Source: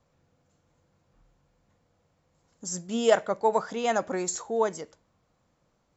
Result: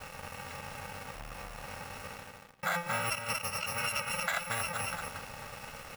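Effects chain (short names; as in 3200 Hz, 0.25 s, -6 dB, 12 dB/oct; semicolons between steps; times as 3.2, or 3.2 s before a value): FFT order left unsorted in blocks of 128 samples; reverse; upward compressor, threshold -26 dBFS; reverse; band shelf 1200 Hz +15.5 dB 2.6 oct; bit-crush 7-bit; expander -45 dBFS; echo 0.231 s -5.5 dB; compressor 6:1, threshold -26 dBFS, peak gain reduction 13 dB; LPF 3800 Hz 6 dB/oct; reverb RT60 1.5 s, pre-delay 68 ms, DRR 17.5 dB; core saturation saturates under 670 Hz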